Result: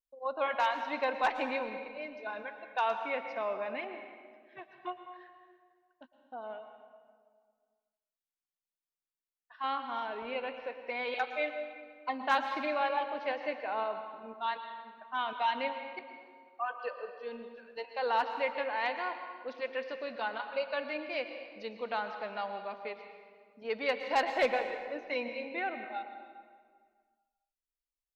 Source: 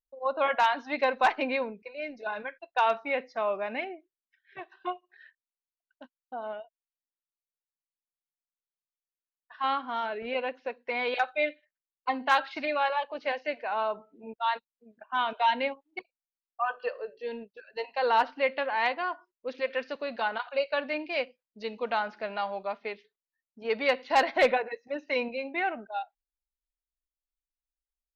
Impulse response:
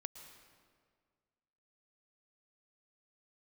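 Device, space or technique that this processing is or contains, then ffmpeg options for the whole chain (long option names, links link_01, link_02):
stairwell: -filter_complex "[1:a]atrim=start_sample=2205[link_01];[0:a][link_01]afir=irnorm=-1:irlink=0,asettb=1/sr,asplit=3[link_02][link_03][link_04];[link_02]atrim=end=12.234[link_05];[link_03]atrim=start=12.23:end=13.84,asetpts=PTS-STARTPTS,afade=type=in:duration=0.004:curve=qsin,afade=type=out:start_time=1.606:duration=0.004:curve=qsin,equalizer=frequency=260:width_type=o:width=2.7:gain=4.5[link_06];[link_04]atrim=start=13.836[link_07];[link_05][link_06]acrossfade=duration=0.004:curve1=hsin:curve2=qsin[link_08];[link_08][link_07]acrossfade=duration=0.004:curve1=qsin:curve2=hsin,volume=-1.5dB"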